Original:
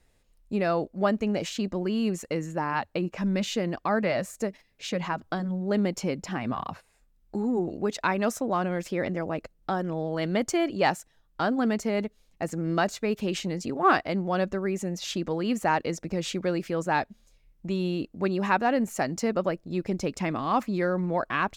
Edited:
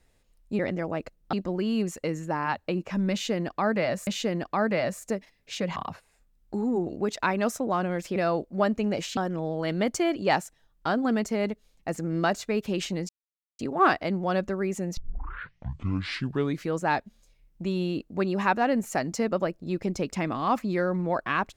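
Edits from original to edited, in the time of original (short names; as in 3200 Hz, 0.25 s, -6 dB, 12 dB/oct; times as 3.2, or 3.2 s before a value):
0.59–1.6 swap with 8.97–9.71
3.39–4.34 loop, 2 plays
5.08–6.57 cut
13.63 insert silence 0.50 s
15.01 tape start 1.81 s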